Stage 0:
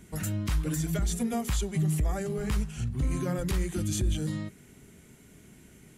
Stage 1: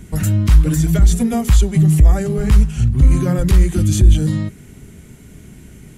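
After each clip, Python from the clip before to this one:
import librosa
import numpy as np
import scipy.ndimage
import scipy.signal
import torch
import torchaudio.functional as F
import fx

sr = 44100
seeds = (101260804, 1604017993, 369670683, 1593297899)

y = fx.low_shelf(x, sr, hz=160.0, db=11.0)
y = F.gain(torch.from_numpy(y), 9.0).numpy()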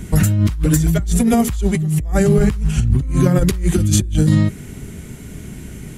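y = fx.over_compress(x, sr, threshold_db=-18.0, ratio=-1.0)
y = F.gain(torch.from_numpy(y), 2.0).numpy()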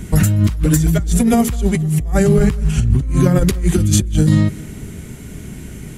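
y = fx.echo_feedback(x, sr, ms=206, feedback_pct=49, wet_db=-22.5)
y = F.gain(torch.from_numpy(y), 1.0).numpy()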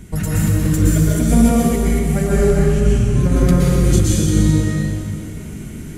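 y = fx.rev_plate(x, sr, seeds[0], rt60_s=2.8, hf_ratio=0.8, predelay_ms=105, drr_db=-7.5)
y = F.gain(torch.from_numpy(y), -8.5).numpy()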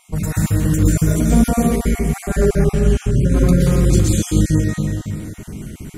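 y = fx.spec_dropout(x, sr, seeds[1], share_pct=23)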